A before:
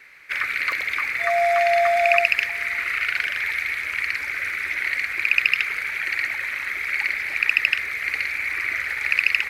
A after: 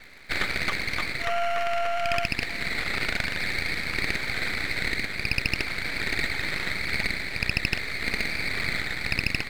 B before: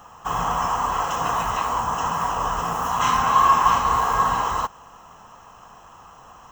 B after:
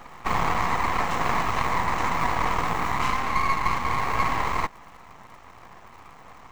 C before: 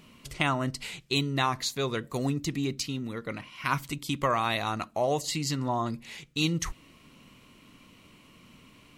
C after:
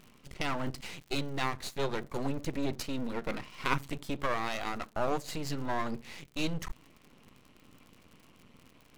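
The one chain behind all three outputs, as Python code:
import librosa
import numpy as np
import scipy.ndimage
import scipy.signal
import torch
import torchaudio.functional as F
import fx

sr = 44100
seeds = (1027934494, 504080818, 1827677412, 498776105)

y = fx.high_shelf(x, sr, hz=2900.0, db=-9.5)
y = fx.rider(y, sr, range_db=5, speed_s=0.5)
y = fx.dmg_crackle(y, sr, seeds[0], per_s=130.0, level_db=-45.0)
y = np.maximum(y, 0.0)
y = y * 10.0 ** (2.0 / 20.0)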